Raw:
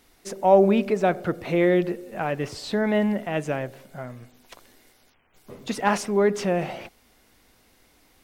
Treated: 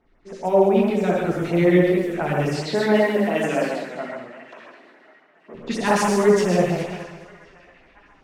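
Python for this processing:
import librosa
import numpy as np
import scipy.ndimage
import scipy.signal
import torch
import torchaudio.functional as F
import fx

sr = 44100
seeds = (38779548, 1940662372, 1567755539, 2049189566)

y = fx.highpass(x, sr, hz=220.0, slope=24, at=(2.45, 5.54))
y = fx.echo_wet_highpass(y, sr, ms=1049, feedback_pct=30, hz=1600.0, wet_db=-13.5)
y = fx.rev_gated(y, sr, seeds[0], gate_ms=190, shape='flat', drr_db=-2.5)
y = fx.env_lowpass(y, sr, base_hz=1700.0, full_db=-19.5)
y = fx.rider(y, sr, range_db=4, speed_s=2.0)
y = fx.filter_lfo_notch(y, sr, shape='sine', hz=7.3, low_hz=590.0, high_hz=4600.0, q=0.98)
y = fx.echo_warbled(y, sr, ms=207, feedback_pct=38, rate_hz=2.8, cents=112, wet_db=-10.0)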